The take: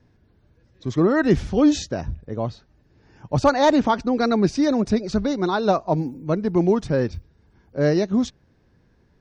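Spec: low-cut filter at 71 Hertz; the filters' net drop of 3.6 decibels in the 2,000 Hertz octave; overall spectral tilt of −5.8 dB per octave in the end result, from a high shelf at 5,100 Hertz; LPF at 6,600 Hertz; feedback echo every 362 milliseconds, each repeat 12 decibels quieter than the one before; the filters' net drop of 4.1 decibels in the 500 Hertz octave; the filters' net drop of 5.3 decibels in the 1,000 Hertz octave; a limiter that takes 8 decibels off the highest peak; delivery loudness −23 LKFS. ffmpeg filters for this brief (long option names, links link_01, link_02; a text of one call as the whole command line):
ffmpeg -i in.wav -af "highpass=71,lowpass=6600,equalizer=frequency=500:width_type=o:gain=-4,equalizer=frequency=1000:width_type=o:gain=-5,equalizer=frequency=2000:width_type=o:gain=-3.5,highshelf=frequency=5100:gain=8.5,alimiter=limit=-16.5dB:level=0:latency=1,aecho=1:1:362|724|1086:0.251|0.0628|0.0157,volume=3.5dB" out.wav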